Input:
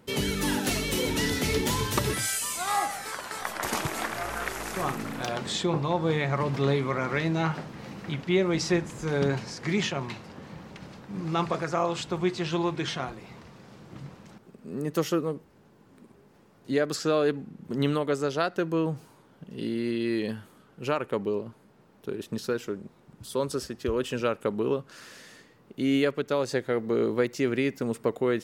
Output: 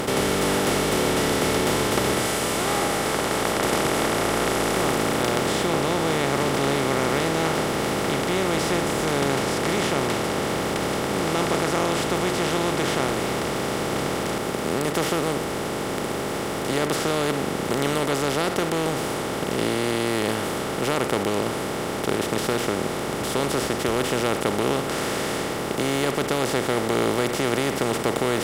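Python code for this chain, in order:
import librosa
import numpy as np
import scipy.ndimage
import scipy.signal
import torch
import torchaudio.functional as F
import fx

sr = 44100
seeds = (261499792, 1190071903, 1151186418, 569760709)

y = fx.bin_compress(x, sr, power=0.2)
y = F.gain(torch.from_numpy(y), -6.0).numpy()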